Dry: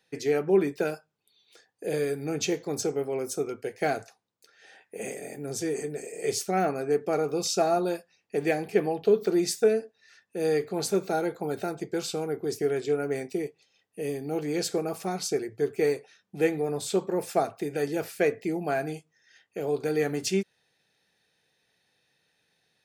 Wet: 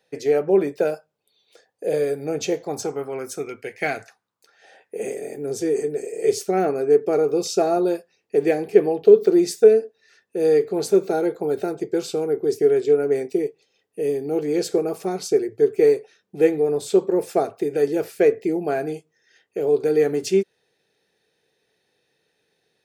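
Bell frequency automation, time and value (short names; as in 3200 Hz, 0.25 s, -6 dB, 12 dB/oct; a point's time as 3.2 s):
bell +10.5 dB 0.9 oct
2.51 s 560 Hz
3.46 s 2200 Hz
3.96 s 2200 Hz
4.96 s 410 Hz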